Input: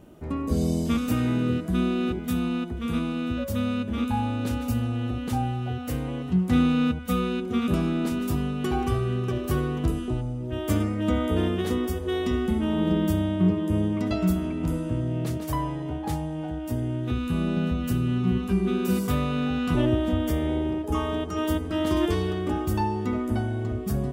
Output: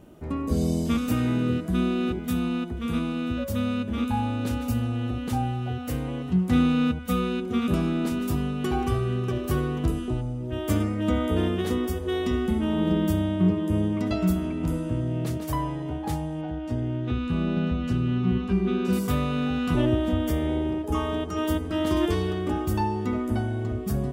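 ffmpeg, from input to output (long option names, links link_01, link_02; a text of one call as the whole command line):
ffmpeg -i in.wav -filter_complex "[0:a]asettb=1/sr,asplit=3[link_01][link_02][link_03];[link_01]atrim=end=16.414[link_04];[link_02]atrim=start=16.41:end=18.93,asetpts=PTS-STARTPTS,afade=type=in:duration=0.004:curve=qsin,afade=type=out:start_time=2.516:duration=0.004:curve=qsin,lowpass=4800[link_05];[link_03]atrim=start=18.926[link_06];[link_04][link_05]acrossfade=duration=0.004:curve1=hsin:curve2=qsin[link_07];[link_07][link_06]acrossfade=duration=0.004:curve1=qsin:curve2=hsin" out.wav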